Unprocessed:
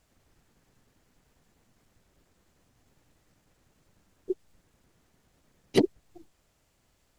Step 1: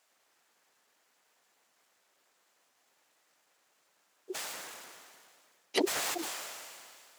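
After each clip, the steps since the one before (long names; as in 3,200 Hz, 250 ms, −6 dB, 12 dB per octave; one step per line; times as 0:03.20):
high-pass filter 720 Hz 12 dB per octave
level that may fall only so fast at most 26 dB per second
level +1 dB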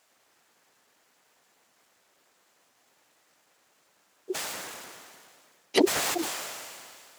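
low-shelf EQ 280 Hz +8 dB
level +5 dB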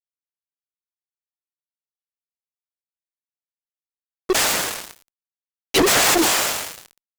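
fuzz pedal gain 36 dB, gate −40 dBFS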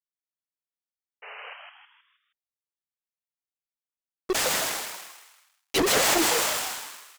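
sound drawn into the spectrogram noise, 0:01.22–0:01.54, 410–3,000 Hz −35 dBFS
echo with shifted repeats 158 ms, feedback 43%, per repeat +140 Hz, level −4.5 dB
level −7 dB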